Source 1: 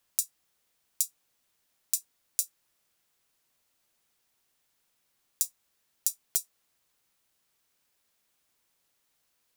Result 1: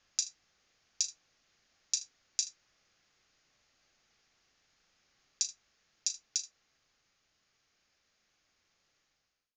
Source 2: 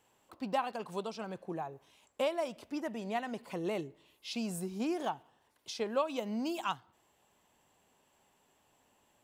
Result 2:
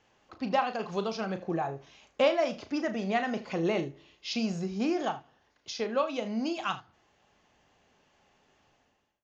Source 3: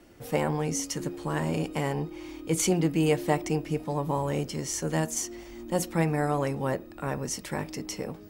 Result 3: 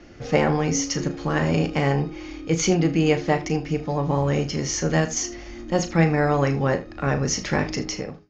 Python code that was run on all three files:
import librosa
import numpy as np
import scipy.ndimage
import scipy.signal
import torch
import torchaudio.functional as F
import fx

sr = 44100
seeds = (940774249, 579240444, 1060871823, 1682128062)

y = fx.fade_out_tail(x, sr, length_s=0.59)
y = fx.low_shelf(y, sr, hz=98.0, db=6.0)
y = fx.notch(y, sr, hz=960.0, q=8.5)
y = fx.rider(y, sr, range_db=5, speed_s=2.0)
y = scipy.signal.sosfilt(scipy.signal.cheby1(6, 3, 6800.0, 'lowpass', fs=sr, output='sos'), y)
y = fx.room_early_taps(y, sr, ms=(36, 78), db=(-10.0, -17.0))
y = y * 10.0 ** (7.5 / 20.0)